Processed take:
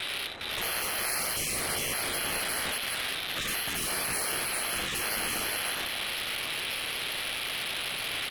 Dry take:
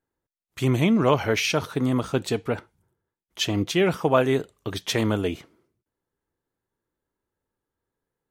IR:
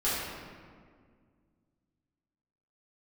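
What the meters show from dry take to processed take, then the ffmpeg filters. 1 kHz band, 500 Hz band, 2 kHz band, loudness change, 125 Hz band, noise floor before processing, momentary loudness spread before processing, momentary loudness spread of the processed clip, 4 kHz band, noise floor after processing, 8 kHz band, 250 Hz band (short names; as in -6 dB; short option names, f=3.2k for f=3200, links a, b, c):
-5.0 dB, -15.0 dB, +2.0 dB, -5.5 dB, -19.0 dB, under -85 dBFS, 10 LU, 3 LU, +3.0 dB, -35 dBFS, +7.5 dB, -18.5 dB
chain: -af "aeval=exprs='val(0)+0.5*0.0708*sgn(val(0))':c=same,lowpass=f=3.4k:t=q:w=0.5098,lowpass=f=3.4k:t=q:w=0.6013,lowpass=f=3.4k:t=q:w=0.9,lowpass=f=3.4k:t=q:w=2.563,afreqshift=-4000,tiltshelf=f=690:g=3.5,aecho=1:1:55|57|91|313|408:0.141|0.376|0.398|0.119|0.668,adynamicsmooth=sensitivity=6.5:basefreq=960,afftfilt=real='re*lt(hypot(re,im),0.0631)':imag='im*lt(hypot(re,im),0.0631)':win_size=1024:overlap=0.75,equalizer=f=990:t=o:w=0.26:g=-5.5,volume=3.5dB"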